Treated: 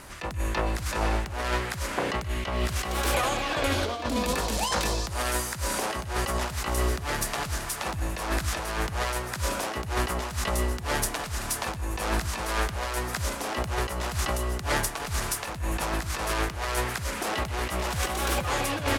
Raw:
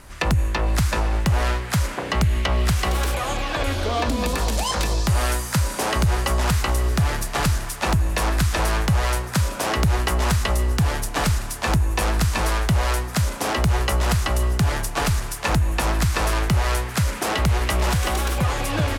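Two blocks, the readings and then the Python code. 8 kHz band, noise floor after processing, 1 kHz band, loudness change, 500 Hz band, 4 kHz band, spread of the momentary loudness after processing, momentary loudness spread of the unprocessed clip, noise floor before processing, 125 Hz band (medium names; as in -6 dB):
-3.5 dB, -36 dBFS, -4.5 dB, -6.5 dB, -3.5 dB, -4.5 dB, 4 LU, 2 LU, -31 dBFS, -11.5 dB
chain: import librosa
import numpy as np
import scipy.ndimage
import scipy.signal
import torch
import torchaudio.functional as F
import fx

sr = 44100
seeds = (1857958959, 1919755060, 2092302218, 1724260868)

y = fx.low_shelf(x, sr, hz=90.0, db=-11.5)
y = fx.over_compress(y, sr, threshold_db=-26.0, ratio=-0.5)
y = y * (1.0 - 0.37 / 2.0 + 0.37 / 2.0 * np.cos(2.0 * np.pi * 1.9 * (np.arange(len(y)) / sr)))
y = y + 10.0 ** (-17.5 / 20.0) * np.pad(y, (int(127 * sr / 1000.0), 0))[:len(y)]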